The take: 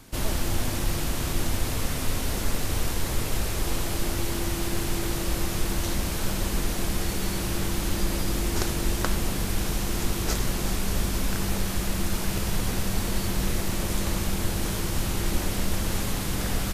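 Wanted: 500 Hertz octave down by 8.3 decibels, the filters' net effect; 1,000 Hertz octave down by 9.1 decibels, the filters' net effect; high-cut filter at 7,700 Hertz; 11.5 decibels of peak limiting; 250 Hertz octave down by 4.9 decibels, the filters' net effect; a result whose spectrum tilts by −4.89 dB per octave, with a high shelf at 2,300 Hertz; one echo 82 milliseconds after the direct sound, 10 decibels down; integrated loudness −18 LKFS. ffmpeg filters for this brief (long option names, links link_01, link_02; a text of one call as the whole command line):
ffmpeg -i in.wav -af "lowpass=7700,equalizer=frequency=250:width_type=o:gain=-4.5,equalizer=frequency=500:width_type=o:gain=-7.5,equalizer=frequency=1000:width_type=o:gain=-8,highshelf=frequency=2300:gain=-6.5,alimiter=limit=-23.5dB:level=0:latency=1,aecho=1:1:82:0.316,volume=17dB" out.wav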